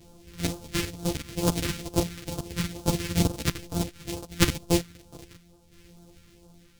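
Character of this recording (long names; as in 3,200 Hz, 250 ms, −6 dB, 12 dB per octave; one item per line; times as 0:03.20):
a buzz of ramps at a fixed pitch in blocks of 256 samples
phaser sweep stages 2, 2.2 Hz, lowest notch 700–1,900 Hz
tremolo saw down 0.7 Hz, depth 60%
a shimmering, thickened sound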